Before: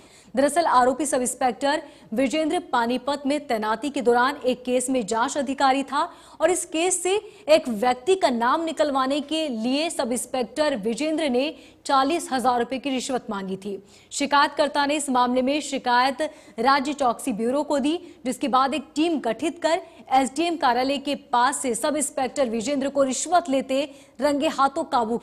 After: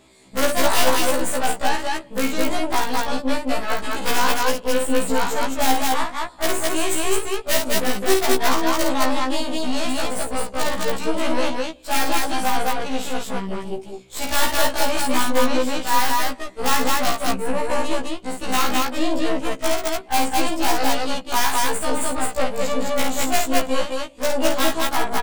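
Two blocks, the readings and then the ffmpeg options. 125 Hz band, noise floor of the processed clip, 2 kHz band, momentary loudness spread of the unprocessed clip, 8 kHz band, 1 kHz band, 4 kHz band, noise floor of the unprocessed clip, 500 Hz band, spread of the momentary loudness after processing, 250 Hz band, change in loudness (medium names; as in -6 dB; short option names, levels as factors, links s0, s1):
+6.5 dB, -40 dBFS, +3.5 dB, 6 LU, +4.5 dB, -0.5 dB, +4.5 dB, -49 dBFS, -0.5 dB, 7 LU, -1.0 dB, +1.0 dB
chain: -af "aeval=exprs='0.531*(cos(1*acos(clip(val(0)/0.531,-1,1)))-cos(1*PI/2))+0.237*(cos(6*acos(clip(val(0)/0.531,-1,1)))-cos(6*PI/2))+0.0188*(cos(7*acos(clip(val(0)/0.531,-1,1)))-cos(7*PI/2))+0.237*(cos(8*acos(clip(val(0)/0.531,-1,1)))-cos(8*PI/2))':c=same,aeval=exprs='(mod(2.82*val(0)+1,2)-1)/2.82':c=same,aecho=1:1:52.48|212.8:0.562|0.891,afftfilt=real='re*1.73*eq(mod(b,3),0)':imag='im*1.73*eq(mod(b,3),0)':win_size=2048:overlap=0.75"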